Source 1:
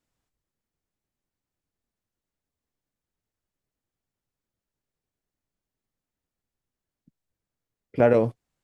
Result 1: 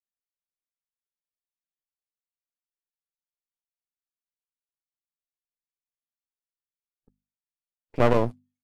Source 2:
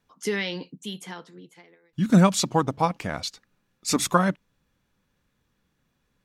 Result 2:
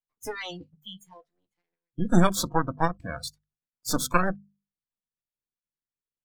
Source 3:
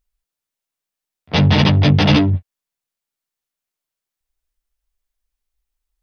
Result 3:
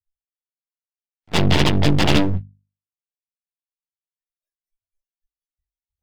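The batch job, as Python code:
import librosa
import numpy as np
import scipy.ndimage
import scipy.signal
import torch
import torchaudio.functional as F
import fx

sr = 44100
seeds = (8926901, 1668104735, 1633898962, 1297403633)

y = np.maximum(x, 0.0)
y = fx.noise_reduce_blind(y, sr, reduce_db=29)
y = fx.hum_notches(y, sr, base_hz=50, count=5)
y = y * librosa.db_to_amplitude(1.5)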